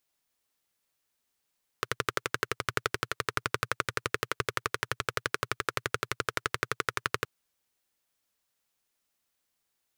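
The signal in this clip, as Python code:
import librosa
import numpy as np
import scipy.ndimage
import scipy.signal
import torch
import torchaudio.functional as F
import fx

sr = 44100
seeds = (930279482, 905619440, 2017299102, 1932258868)

y = fx.engine_single(sr, seeds[0], length_s=5.42, rpm=1400, resonances_hz=(120.0, 430.0, 1300.0))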